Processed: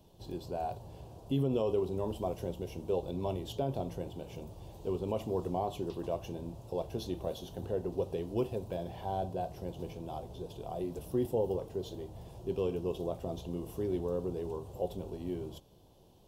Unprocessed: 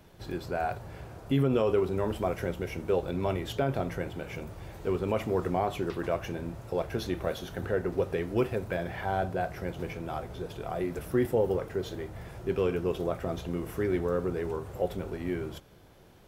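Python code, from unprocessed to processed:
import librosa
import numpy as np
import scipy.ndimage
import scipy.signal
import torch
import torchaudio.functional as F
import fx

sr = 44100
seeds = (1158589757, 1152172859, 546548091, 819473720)

y = fx.band_shelf(x, sr, hz=1700.0, db=-16.0, octaves=1.1)
y = y * 10.0 ** (-5.0 / 20.0)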